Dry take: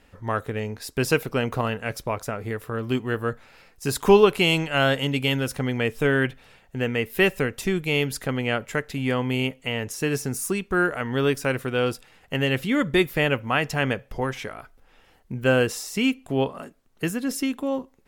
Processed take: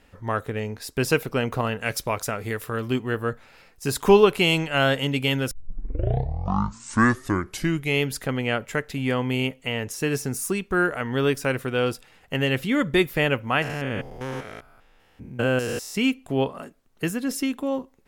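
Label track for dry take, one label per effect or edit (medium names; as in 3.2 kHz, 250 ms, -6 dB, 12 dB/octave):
1.810000	2.880000	treble shelf 2 kHz +8.5 dB
5.510000	5.510000	tape start 2.51 s
13.620000	15.950000	spectrogram pixelated in time every 200 ms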